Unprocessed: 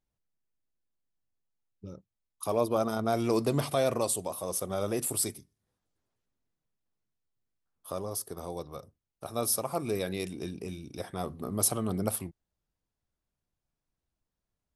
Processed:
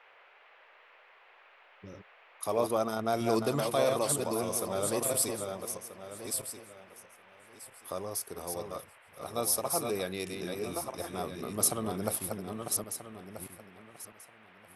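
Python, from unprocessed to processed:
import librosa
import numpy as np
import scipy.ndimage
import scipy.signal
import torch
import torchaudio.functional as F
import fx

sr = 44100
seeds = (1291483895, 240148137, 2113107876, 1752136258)

y = fx.reverse_delay_fb(x, sr, ms=642, feedback_pct=41, wet_db=-4.5)
y = fx.low_shelf(y, sr, hz=270.0, db=-7.0)
y = fx.dmg_noise_band(y, sr, seeds[0], low_hz=460.0, high_hz=2600.0, level_db=-59.0)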